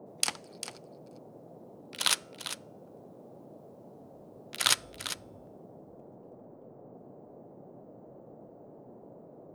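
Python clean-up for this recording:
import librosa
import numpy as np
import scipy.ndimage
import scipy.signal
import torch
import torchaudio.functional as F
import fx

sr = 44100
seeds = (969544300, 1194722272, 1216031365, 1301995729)

y = fx.noise_reduce(x, sr, print_start_s=6.34, print_end_s=6.84, reduce_db=30.0)
y = fx.fix_echo_inverse(y, sr, delay_ms=398, level_db=-11.5)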